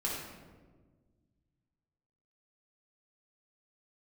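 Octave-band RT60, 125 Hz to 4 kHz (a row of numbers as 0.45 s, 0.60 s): 2.6 s, 2.2 s, 1.7 s, 1.2 s, 1.0 s, 0.75 s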